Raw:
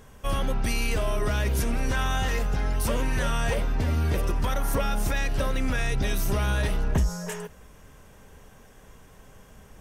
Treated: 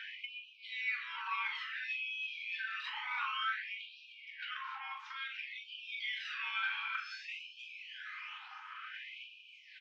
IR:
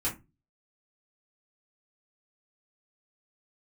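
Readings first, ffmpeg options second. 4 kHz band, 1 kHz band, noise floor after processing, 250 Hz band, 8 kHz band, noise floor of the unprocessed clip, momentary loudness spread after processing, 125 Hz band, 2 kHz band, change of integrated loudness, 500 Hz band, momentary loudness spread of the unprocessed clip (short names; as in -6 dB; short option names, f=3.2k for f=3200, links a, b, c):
-5.0 dB, -9.0 dB, -57 dBFS, under -40 dB, under -30 dB, -51 dBFS, 12 LU, under -40 dB, -3.5 dB, -12.0 dB, under -40 dB, 3 LU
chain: -filter_complex "[0:a]asplit=2[a][b];[b]aecho=0:1:294:0.15[c];[a][c]amix=inputs=2:normalize=0,acrossover=split=220|440[d][e][f];[d]acompressor=threshold=-34dB:ratio=4[g];[e]acompressor=threshold=-46dB:ratio=4[h];[f]acompressor=threshold=-37dB:ratio=4[i];[g][h][i]amix=inputs=3:normalize=0,alimiter=level_in=3dB:limit=-24dB:level=0:latency=1,volume=-3dB,equalizer=f=250:t=o:w=1:g=11,equalizer=f=500:t=o:w=1:g=-7,equalizer=f=1k:t=o:w=1:g=-6,aphaser=in_gain=1:out_gain=1:delay=1.1:decay=0.59:speed=0.22:type=sinusoidal,highpass=f=270:t=q:w=0.5412,highpass=f=270:t=q:w=1.307,lowpass=f=3.6k:t=q:w=0.5176,lowpass=f=3.6k:t=q:w=0.7071,lowpass=f=3.6k:t=q:w=1.932,afreqshift=-320,asplit=2[j][k];[k]adelay=41,volume=-5.5dB[l];[j][l]amix=inputs=2:normalize=0,acompressor=threshold=-48dB:ratio=6,asplit=2[m][n];[1:a]atrim=start_sample=2205,highshelf=f=3.7k:g=9.5[o];[n][o]afir=irnorm=-1:irlink=0,volume=-9dB[p];[m][p]amix=inputs=2:normalize=0,afftfilt=real='re*gte(b*sr/1024,760*pow(2400/760,0.5+0.5*sin(2*PI*0.56*pts/sr)))':imag='im*gte(b*sr/1024,760*pow(2400/760,0.5+0.5*sin(2*PI*0.56*pts/sr)))':win_size=1024:overlap=0.75,volume=13dB"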